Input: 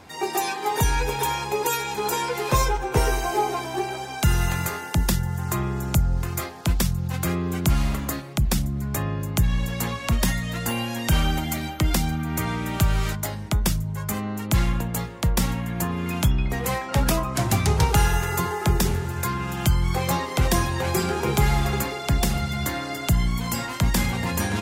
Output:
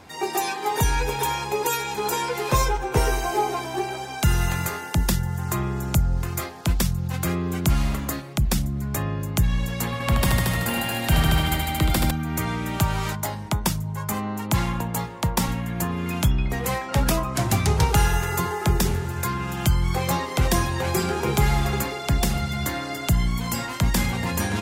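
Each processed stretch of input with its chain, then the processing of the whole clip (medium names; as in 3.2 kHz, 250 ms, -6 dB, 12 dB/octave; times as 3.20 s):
9.85–12.11 s: peaking EQ 6.2 kHz -7 dB 0.47 oct + multi-head delay 76 ms, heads all three, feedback 47%, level -6 dB
12.80–15.48 s: high-pass 73 Hz + peaking EQ 920 Hz +7.5 dB 0.47 oct
whole clip: none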